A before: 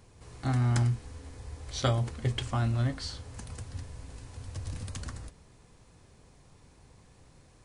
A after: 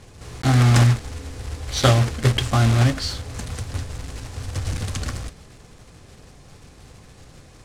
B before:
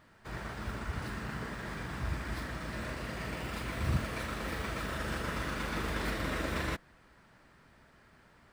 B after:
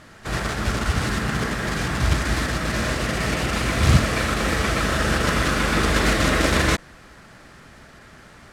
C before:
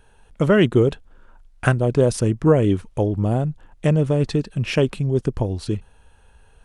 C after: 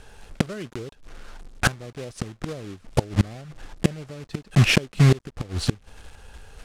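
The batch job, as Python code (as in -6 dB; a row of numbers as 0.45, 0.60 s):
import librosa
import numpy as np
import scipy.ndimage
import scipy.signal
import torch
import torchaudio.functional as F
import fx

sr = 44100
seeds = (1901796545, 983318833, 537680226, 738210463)

y = fx.block_float(x, sr, bits=3)
y = scipy.signal.sosfilt(scipy.signal.butter(2, 8600.0, 'lowpass', fs=sr, output='sos'), y)
y = fx.notch(y, sr, hz=950.0, q=12.0)
y = fx.gate_flip(y, sr, shuts_db=-14.0, range_db=-27)
y = y * 10.0 ** (-3 / 20.0) / np.max(np.abs(y))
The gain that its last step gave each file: +11.5, +15.0, +7.5 dB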